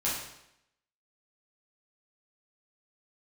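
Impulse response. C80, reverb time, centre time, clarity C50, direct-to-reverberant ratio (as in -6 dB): 5.5 dB, 0.80 s, 56 ms, 2.0 dB, -8.0 dB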